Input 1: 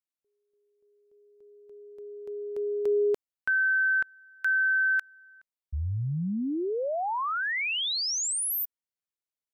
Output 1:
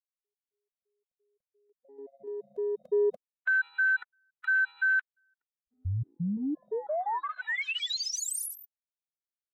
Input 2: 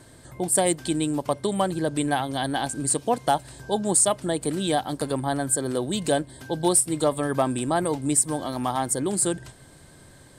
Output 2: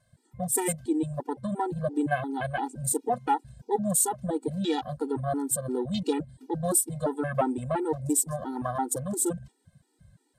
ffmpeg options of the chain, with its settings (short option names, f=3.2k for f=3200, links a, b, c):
-af "bandreject=f=1.2k:w=19,afwtdn=0.02,afftfilt=real='re*gt(sin(2*PI*2.9*pts/sr)*(1-2*mod(floor(b*sr/1024/250),2)),0)':imag='im*gt(sin(2*PI*2.9*pts/sr)*(1-2*mod(floor(b*sr/1024/250),2)),0)':win_size=1024:overlap=0.75"